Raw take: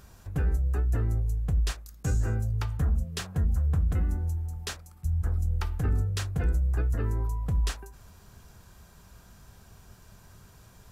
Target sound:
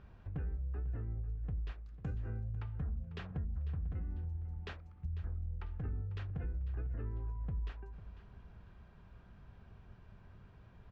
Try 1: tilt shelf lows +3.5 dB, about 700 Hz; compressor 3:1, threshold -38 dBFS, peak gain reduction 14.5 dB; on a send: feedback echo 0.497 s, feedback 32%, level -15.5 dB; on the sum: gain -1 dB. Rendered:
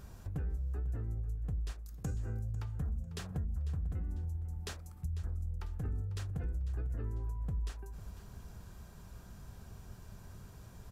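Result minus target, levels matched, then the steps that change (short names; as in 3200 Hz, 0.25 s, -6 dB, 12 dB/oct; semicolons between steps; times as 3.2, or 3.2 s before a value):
4000 Hz band +4.0 dB
add first: ladder low-pass 3500 Hz, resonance 25%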